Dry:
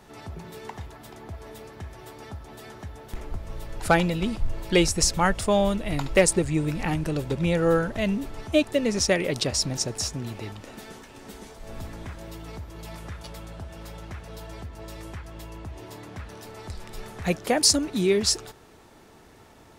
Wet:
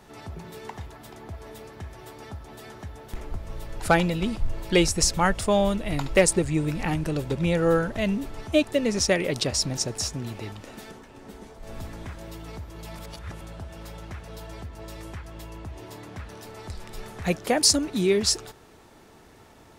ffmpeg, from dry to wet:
ffmpeg -i in.wav -filter_complex "[0:a]asettb=1/sr,asplit=3[link_01][link_02][link_03];[link_01]atrim=end=10.914[link_04];[link_02]atrim=start=10.91:end=11.63,asetpts=PTS-STARTPTS,afade=type=in:duration=0.004:curve=qsin,afade=type=out:start_time=0.716:duration=0.004:curve=qsin,highshelf=frequency=2000:gain=-8[link_05];[link_03]atrim=start=11.626[link_06];[link_04][link_05]acrossfade=duration=0.004:curve1=hsin:curve2=qsin[link_07];[link_07][link_06]acrossfade=duration=0.004:curve1=qsin:curve2=hsin,asplit=3[link_08][link_09][link_10];[link_08]atrim=end=12.992[link_11];[link_09]atrim=start=12.988:end=13.412,asetpts=PTS-STARTPTS,areverse[link_12];[link_10]atrim=start=13.408[link_13];[link_11][link_12]acrossfade=duration=0.004:curve1=hsin:curve2=hsin[link_14];[link_14][link_13]acrossfade=duration=0.004:curve1=hsin:curve2=hsin" out.wav

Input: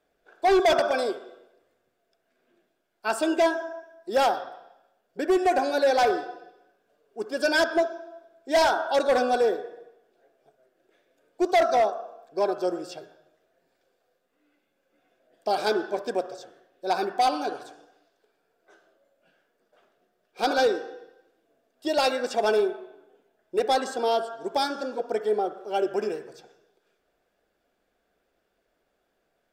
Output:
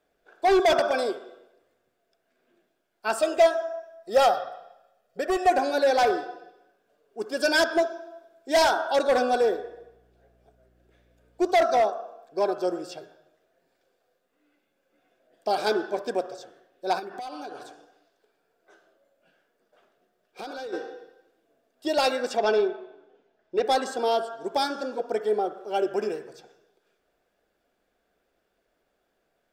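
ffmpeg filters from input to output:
ffmpeg -i in.wav -filter_complex "[0:a]asettb=1/sr,asplit=3[link_01][link_02][link_03];[link_01]atrim=end=3.184[link_04];[link_02]atrim=start=3.18:end=5.5,asetpts=PTS-STARTPTS,afade=type=in:duration=0.004:curve=qsin,afade=type=out:start_time=2.316:duration=0.004:curve=qsin,aecho=1:1:1.6:0.65,atrim=end_sample=102312[link_05];[link_03]atrim=start=5.496[link_06];[link_04][link_05]acrossfade=duration=0.004:curve1=hsin:curve2=qsin[link_07];[link_07][link_06]acrossfade=duration=0.004:curve1=qsin:curve2=hsin,asettb=1/sr,asplit=3[link_08][link_09][link_10];[link_08]atrim=end=7.214[link_11];[link_09]atrim=start=7.21:end=8.93,asetpts=PTS-STARTPTS,afade=type=in:duration=0.004:curve=qsin,afade=type=out:start_time=1.716:duration=0.004:curve=qsin,equalizer=frequency=12000:width_type=o:width=2.5:gain=4[link_12];[link_10]atrim=start=8.926[link_13];[link_11][link_12]acrossfade=duration=0.004:curve1=hsin:curve2=qsin[link_14];[link_14][link_13]acrossfade=duration=0.004:curve1=qsin:curve2=hsin,asettb=1/sr,asplit=3[link_15][link_16][link_17];[link_15]atrim=end=9.454[link_18];[link_16]atrim=start=9.45:end=11.54,asetpts=PTS-STARTPTS,afade=type=in:duration=0.004:curve=qsin,afade=type=out:start_time=2.086:duration=0.004:curve=qsin,aeval=exprs='val(0)+0.000708*(sin(2*PI*60*n/s)+sin(2*PI*2*60*n/s)/2+sin(2*PI*3*60*n/s)/3+sin(2*PI*4*60*n/s)/4+sin(2*PI*5*60*n/s)/5)':channel_layout=same[link_19];[link_17]atrim=start=11.536[link_20];[link_18][link_19]acrossfade=duration=0.004:curve1=hsin:curve2=qsin[link_21];[link_21][link_20]acrossfade=duration=0.004:curve1=qsin:curve2=hsin,asplit=3[link_22][link_23][link_24];[link_22]afade=type=out:start_time=16.98:duration=0.02[link_25];[link_23]acompressor=threshold=-33dB:ratio=20:attack=3.2:release=140:knee=1:detection=peak,afade=type=in:start_time=16.98:duration=0.02,afade=type=out:start_time=20.72:duration=0.02[link_26];[link_24]afade=type=in:start_time=20.72:duration=0.02[link_27];[link_25][link_26][link_27]amix=inputs=3:normalize=0,asettb=1/sr,asplit=3[link_28][link_29][link_30];[link_28]atrim=end=22.374[link_31];[link_29]atrim=start=22.37:end=23.66,asetpts=PTS-STARTPTS,afade=type=in:duration=0.004:curve=qsin,afade=type=out:start_time=1.286:duration=0.004:curve=qsin,lowpass=frequency=6000:width=0.5412,lowpass=frequency=6000:width=1.3066[link_32];[link_30]atrim=start=23.656[link_33];[link_31][link_32]acrossfade=duration=0.004:curve1=hsin:curve2=qsin[link_34];[link_34][link_33]acrossfade=duration=0.004:curve1=qsin:curve2=hsin" out.wav

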